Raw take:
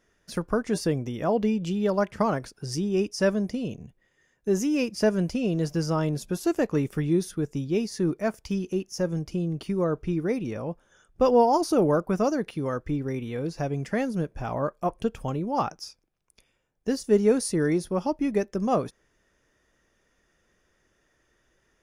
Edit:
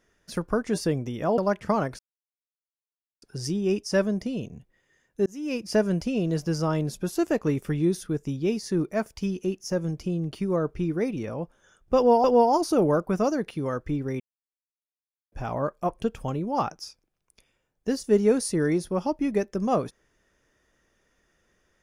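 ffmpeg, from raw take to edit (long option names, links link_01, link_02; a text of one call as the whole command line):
ffmpeg -i in.wav -filter_complex "[0:a]asplit=7[link_01][link_02][link_03][link_04][link_05][link_06][link_07];[link_01]atrim=end=1.382[link_08];[link_02]atrim=start=1.888:end=2.5,asetpts=PTS-STARTPTS,afade=type=out:start_time=0.608:duration=0.004:curve=hsin,apad=pad_dur=1.23[link_09];[link_03]atrim=start=2.5:end=4.54,asetpts=PTS-STARTPTS,afade=type=in:duration=0.004:curve=hsin,afade=type=out:start_time=2.036:duration=0.004:curve=hsin[link_10];[link_04]atrim=start=4.54:end=11.522,asetpts=PTS-STARTPTS,afade=type=in:duration=0.41[link_11];[link_05]atrim=start=11.238:end=13.2,asetpts=PTS-STARTPTS,afade=type=out:start_time=1.958:duration=0.004:curve=hsin[link_12];[link_06]atrim=start=13.2:end=14.32,asetpts=PTS-STARTPTS,volume=0[link_13];[link_07]atrim=start=14.32,asetpts=PTS-STARTPTS,afade=type=in:duration=0.004:curve=hsin[link_14];[link_09][link_10][link_11]concat=n=3:v=0:a=1[link_15];[link_08][link_15]acrossfade=duration=0.004:curve1=hsin:curve2=hsin[link_16];[link_12][link_13][link_14]concat=n=3:v=0:a=1[link_17];[link_16][link_17]acrossfade=duration=0.004:curve1=hsin:curve2=hsin" out.wav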